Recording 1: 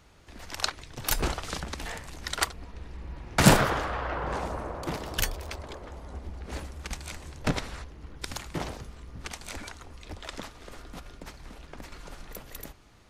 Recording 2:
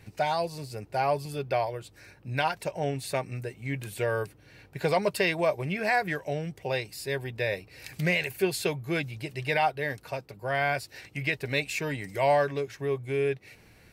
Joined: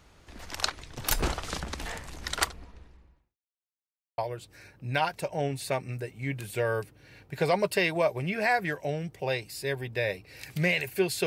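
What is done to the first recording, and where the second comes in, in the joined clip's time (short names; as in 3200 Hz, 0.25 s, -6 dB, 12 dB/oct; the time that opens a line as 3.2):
recording 1
2.43–3.38 fade out quadratic
3.38–4.18 mute
4.18 switch to recording 2 from 1.61 s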